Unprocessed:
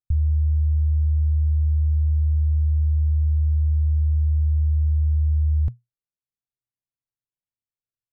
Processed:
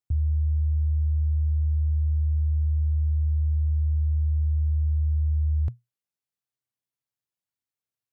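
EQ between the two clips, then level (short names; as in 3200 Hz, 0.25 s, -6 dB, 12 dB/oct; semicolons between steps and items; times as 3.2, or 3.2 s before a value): HPF 88 Hz 12 dB/oct; dynamic EQ 180 Hz, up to -6 dB, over -47 dBFS, Q 1.3; +1.5 dB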